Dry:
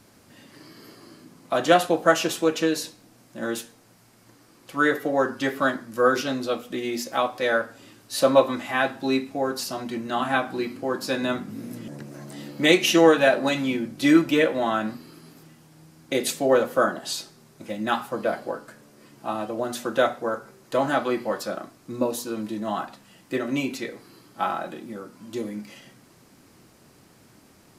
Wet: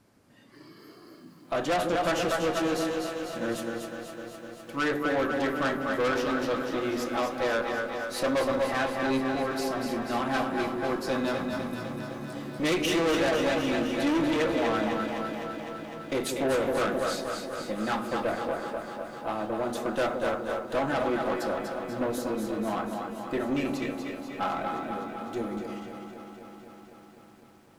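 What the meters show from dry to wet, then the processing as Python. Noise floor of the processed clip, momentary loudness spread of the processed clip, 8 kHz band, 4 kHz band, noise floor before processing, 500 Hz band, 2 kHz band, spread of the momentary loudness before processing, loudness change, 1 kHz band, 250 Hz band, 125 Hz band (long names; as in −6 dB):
−53 dBFS, 11 LU, −6.5 dB, −5.5 dB, −55 dBFS, −4.5 dB, −4.5 dB, 17 LU, −5.0 dB, −3.5 dB, −3.5 dB, −1.5 dB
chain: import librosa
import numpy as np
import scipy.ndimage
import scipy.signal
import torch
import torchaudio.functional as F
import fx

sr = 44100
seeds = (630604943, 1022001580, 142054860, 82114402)

y = fx.high_shelf(x, sr, hz=3500.0, db=-11.5)
y = fx.echo_split(y, sr, split_hz=480.0, low_ms=165, high_ms=241, feedback_pct=52, wet_db=-7.0)
y = fx.noise_reduce_blind(y, sr, reduce_db=6)
y = fx.tube_stage(y, sr, drive_db=23.0, bias=0.4)
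y = fx.peak_eq(y, sr, hz=11000.0, db=4.0, octaves=1.7)
y = fx.echo_crushed(y, sr, ms=253, feedback_pct=80, bits=10, wet_db=-10.5)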